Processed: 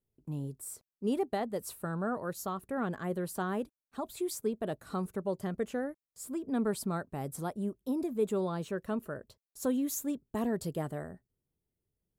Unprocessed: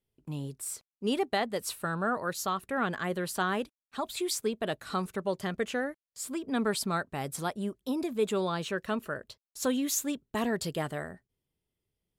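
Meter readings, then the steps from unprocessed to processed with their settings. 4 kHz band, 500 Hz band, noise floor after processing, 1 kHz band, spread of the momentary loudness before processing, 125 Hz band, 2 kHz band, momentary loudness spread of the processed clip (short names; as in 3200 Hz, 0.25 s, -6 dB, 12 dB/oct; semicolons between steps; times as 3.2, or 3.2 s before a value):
-12.5 dB, -2.0 dB, under -85 dBFS, -5.5 dB, 9 LU, -0.5 dB, -10.0 dB, 10 LU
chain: bell 3100 Hz -13.5 dB 2.9 oct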